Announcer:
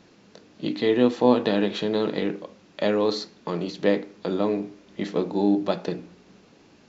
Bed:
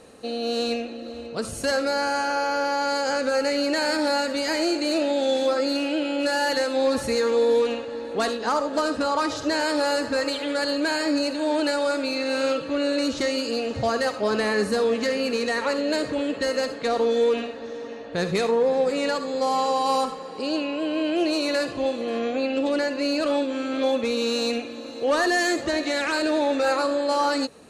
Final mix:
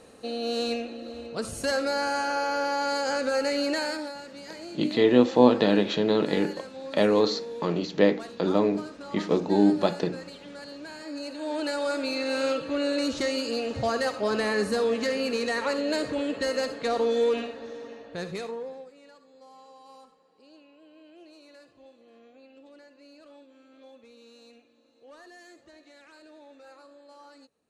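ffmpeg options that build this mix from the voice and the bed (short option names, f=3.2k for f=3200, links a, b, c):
-filter_complex "[0:a]adelay=4150,volume=1dB[a];[1:a]volume=11.5dB,afade=t=out:st=3.7:d=0.44:silence=0.188365,afade=t=in:st=10.99:d=1.09:silence=0.188365,afade=t=out:st=17.41:d=1.5:silence=0.0530884[b];[a][b]amix=inputs=2:normalize=0"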